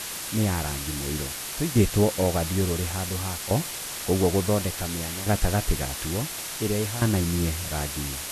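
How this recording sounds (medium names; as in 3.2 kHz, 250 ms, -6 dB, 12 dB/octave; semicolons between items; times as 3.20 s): tremolo saw down 0.57 Hz, depth 80%; a quantiser's noise floor 6-bit, dither triangular; Vorbis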